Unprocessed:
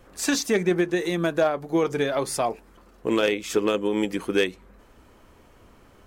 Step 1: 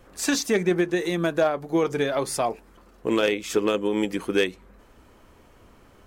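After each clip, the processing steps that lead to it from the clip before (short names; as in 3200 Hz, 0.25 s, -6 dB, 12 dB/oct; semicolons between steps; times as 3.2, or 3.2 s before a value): nothing audible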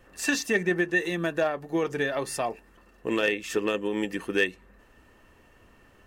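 small resonant body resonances 1800/2700 Hz, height 16 dB, ringing for 45 ms; gain -4.5 dB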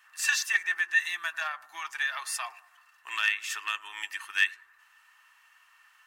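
inverse Chebyshev high-pass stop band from 530 Hz, stop band 40 dB; analogue delay 97 ms, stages 1024, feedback 46%, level -18.5 dB; gain +2 dB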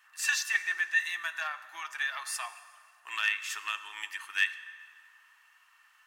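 plate-style reverb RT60 2.3 s, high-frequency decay 0.7×, DRR 12.5 dB; gain -2.5 dB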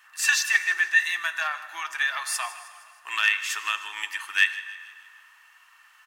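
feedback echo 0.156 s, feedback 53%, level -17.5 dB; gain +7 dB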